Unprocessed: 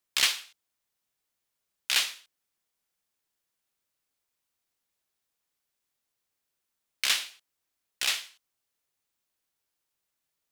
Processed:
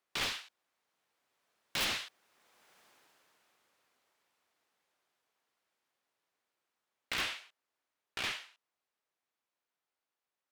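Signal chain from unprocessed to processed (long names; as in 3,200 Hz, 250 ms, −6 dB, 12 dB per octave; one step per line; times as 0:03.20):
source passing by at 0:02.79, 27 m/s, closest 7.6 metres
mid-hump overdrive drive 32 dB, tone 1,000 Hz, clips at −20.5 dBFS
wrap-around overflow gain 29.5 dB
level +5 dB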